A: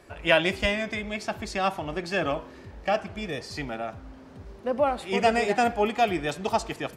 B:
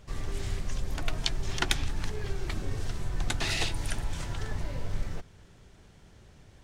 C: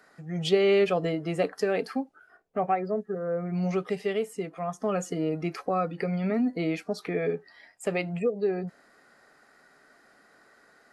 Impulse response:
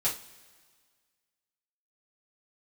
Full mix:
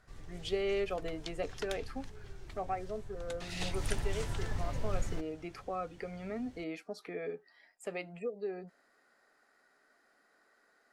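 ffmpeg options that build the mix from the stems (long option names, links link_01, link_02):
-filter_complex "[1:a]volume=-2.5dB,afade=type=in:start_time=3.49:duration=0.38:silence=0.223872[link_01];[2:a]equalizer=frequency=120:width_type=o:width=1.2:gain=-12.5,volume=-10dB[link_02];[link_01][link_02]amix=inputs=2:normalize=0"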